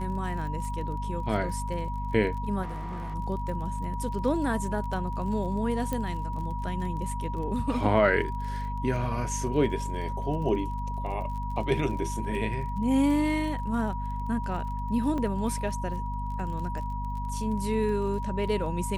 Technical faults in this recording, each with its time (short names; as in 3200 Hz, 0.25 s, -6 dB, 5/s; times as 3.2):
crackle 32/s -37 dBFS
hum 50 Hz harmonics 5 -33 dBFS
tone 960 Hz -35 dBFS
2.62–3.15 clipped -32 dBFS
5.93 pop -17 dBFS
15.18 gap 4.1 ms